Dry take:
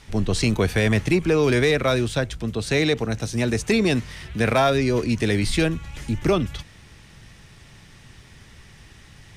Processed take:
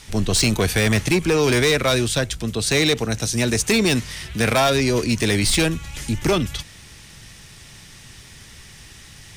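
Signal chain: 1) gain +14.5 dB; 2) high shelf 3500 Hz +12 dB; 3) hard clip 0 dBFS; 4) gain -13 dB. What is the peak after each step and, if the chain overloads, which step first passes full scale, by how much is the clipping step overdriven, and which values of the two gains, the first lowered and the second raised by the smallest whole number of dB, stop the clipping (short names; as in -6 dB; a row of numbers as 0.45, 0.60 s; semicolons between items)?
+5.0, +6.5, 0.0, -13.0 dBFS; step 1, 6.5 dB; step 1 +7.5 dB, step 4 -6 dB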